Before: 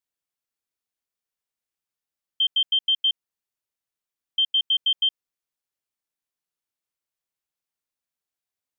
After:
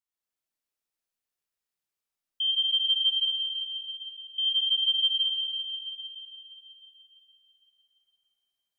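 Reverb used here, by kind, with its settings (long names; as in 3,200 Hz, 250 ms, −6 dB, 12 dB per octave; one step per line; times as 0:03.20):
comb and all-pass reverb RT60 3.7 s, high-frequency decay 1×, pre-delay 30 ms, DRR −6.5 dB
level −7.5 dB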